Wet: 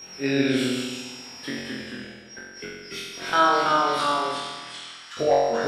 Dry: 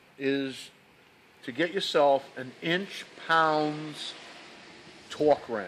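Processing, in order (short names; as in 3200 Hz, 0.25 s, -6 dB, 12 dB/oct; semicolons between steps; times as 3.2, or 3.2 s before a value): reverb removal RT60 1.1 s; in parallel at +2.5 dB: compressor, threshold -39 dBFS, peak gain reduction 20.5 dB; on the sum: whine 5600 Hz -38 dBFS; 1.56–3.33 flipped gate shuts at -23 dBFS, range -39 dB; 4.01–5.17 ladder high-pass 1100 Hz, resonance 50%; flutter echo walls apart 3.7 m, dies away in 1.3 s; echoes that change speed 0.13 s, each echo -1 st, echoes 2; gain -2.5 dB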